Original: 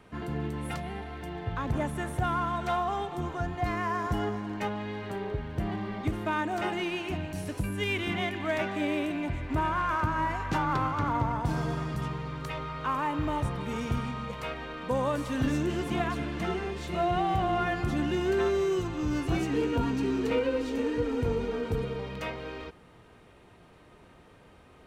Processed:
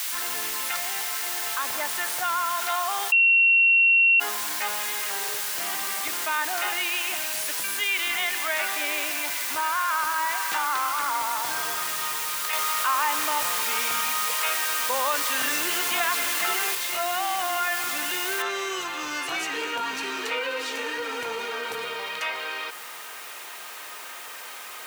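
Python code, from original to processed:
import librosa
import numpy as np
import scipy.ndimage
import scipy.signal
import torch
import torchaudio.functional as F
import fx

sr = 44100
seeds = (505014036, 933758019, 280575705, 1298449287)

y = fx.high_shelf(x, sr, hz=11000.0, db=8.5, at=(6.33, 7.9))
y = fx.noise_floor_step(y, sr, seeds[0], at_s=18.42, before_db=-42, after_db=-64, tilt_db=0.0)
y = fx.edit(y, sr, fx.bleep(start_s=3.12, length_s=1.08, hz=2730.0, db=-14.5),
    fx.clip_gain(start_s=12.53, length_s=4.22, db=5.5), tone=tone)
y = scipy.signal.sosfilt(scipy.signal.butter(2, 1200.0, 'highpass', fs=sr, output='sos'), y)
y = fx.env_flatten(y, sr, amount_pct=50)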